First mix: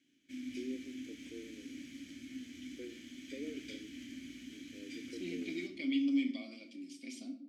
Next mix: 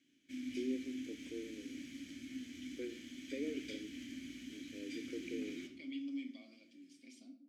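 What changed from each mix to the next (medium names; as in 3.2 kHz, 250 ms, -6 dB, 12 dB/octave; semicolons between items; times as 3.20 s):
first voice +3.5 dB; second voice -11.0 dB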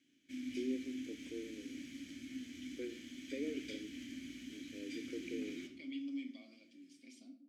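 no change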